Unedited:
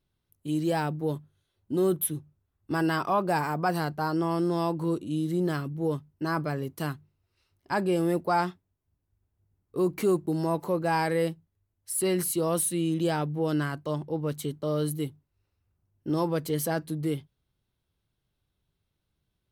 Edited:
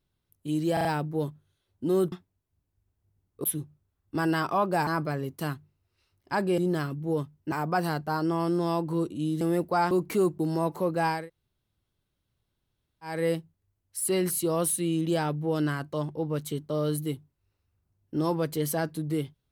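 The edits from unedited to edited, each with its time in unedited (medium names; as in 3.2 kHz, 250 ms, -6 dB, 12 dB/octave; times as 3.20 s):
0.73 s: stutter 0.04 s, 4 plays
3.43–5.32 s: swap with 6.26–7.97 s
8.47–9.79 s: move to 2.00 s
11.06 s: insert room tone 1.95 s, crossfade 0.24 s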